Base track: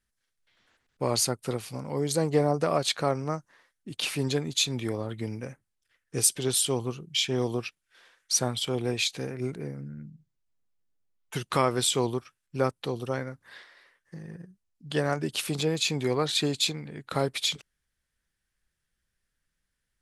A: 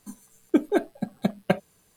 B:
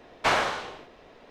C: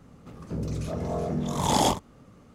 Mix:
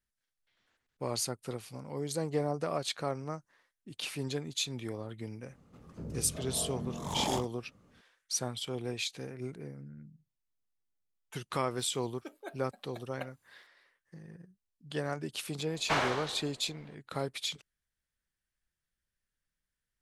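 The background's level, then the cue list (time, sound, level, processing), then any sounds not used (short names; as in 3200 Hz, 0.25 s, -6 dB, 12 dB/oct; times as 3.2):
base track -8 dB
5.47 add C -10.5 dB
11.71 add A -14.5 dB + HPF 650 Hz
15.65 add B -6.5 dB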